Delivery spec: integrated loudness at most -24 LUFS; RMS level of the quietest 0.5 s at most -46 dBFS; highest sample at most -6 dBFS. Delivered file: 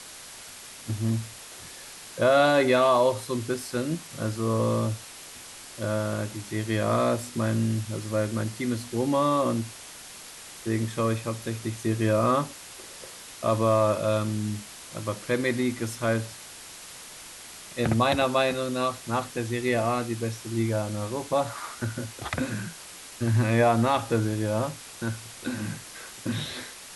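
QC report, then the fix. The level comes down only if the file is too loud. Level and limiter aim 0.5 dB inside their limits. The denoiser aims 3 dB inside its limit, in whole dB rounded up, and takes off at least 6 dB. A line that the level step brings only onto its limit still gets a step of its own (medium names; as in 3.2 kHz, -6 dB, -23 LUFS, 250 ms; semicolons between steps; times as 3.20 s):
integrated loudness -27.0 LUFS: pass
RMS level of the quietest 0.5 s -44 dBFS: fail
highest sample -9.5 dBFS: pass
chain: noise reduction 6 dB, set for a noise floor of -44 dBFS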